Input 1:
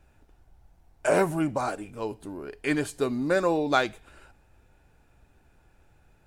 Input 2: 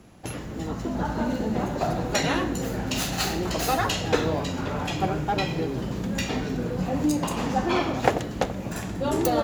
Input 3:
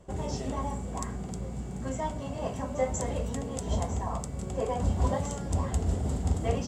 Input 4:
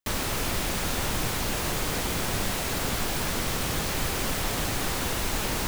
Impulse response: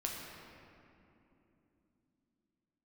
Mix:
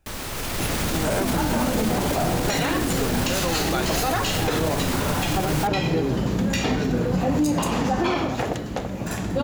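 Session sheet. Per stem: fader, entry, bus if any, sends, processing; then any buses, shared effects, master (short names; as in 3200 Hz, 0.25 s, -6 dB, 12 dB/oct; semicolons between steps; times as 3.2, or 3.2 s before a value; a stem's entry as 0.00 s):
-5.5 dB, 0.00 s, no bus, no send, high shelf 6400 Hz +9.5 dB
+1.5 dB, 0.35 s, no bus, no send, dry
off
-4.5 dB, 0.00 s, bus A, no send, dry
bus A: 0.0 dB, AGC; limiter -22 dBFS, peak gain reduction 14 dB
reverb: off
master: AGC gain up to 5 dB; limiter -13.5 dBFS, peak gain reduction 11.5 dB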